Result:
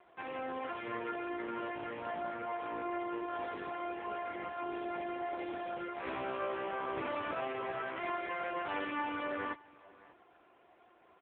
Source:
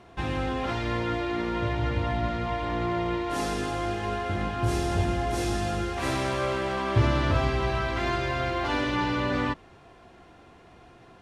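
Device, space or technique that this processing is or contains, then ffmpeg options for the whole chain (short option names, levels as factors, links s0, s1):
satellite phone: -af "highpass=350,lowpass=3200,aecho=1:1:590:0.0794,volume=0.501" -ar 8000 -c:a libopencore_amrnb -b:a 5900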